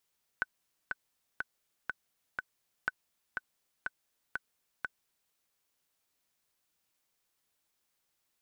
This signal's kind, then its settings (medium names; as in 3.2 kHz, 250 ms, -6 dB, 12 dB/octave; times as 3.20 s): metronome 122 bpm, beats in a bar 5, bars 2, 1.51 kHz, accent 4.5 dB -16.5 dBFS